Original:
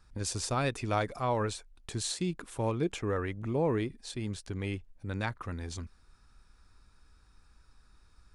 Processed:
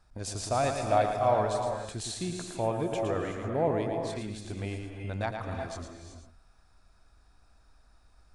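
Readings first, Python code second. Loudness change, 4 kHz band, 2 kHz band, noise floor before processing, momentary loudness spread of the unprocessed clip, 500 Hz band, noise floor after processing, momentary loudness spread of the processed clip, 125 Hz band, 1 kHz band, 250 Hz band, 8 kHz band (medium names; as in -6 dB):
+2.5 dB, -1.0 dB, -0.5 dB, -62 dBFS, 9 LU, +5.0 dB, -62 dBFS, 12 LU, -0.5 dB, +6.0 dB, -0.5 dB, -1.0 dB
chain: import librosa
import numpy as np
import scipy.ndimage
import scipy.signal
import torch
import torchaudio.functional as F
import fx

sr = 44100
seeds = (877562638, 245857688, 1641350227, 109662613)

p1 = fx.peak_eq(x, sr, hz=680.0, db=14.5, octaves=0.43)
p2 = p1 + fx.echo_single(p1, sr, ms=113, db=-6.5, dry=0)
p3 = fx.rev_gated(p2, sr, seeds[0], gate_ms=400, shape='rising', drr_db=5.0)
y = p3 * 10.0 ** (-3.0 / 20.0)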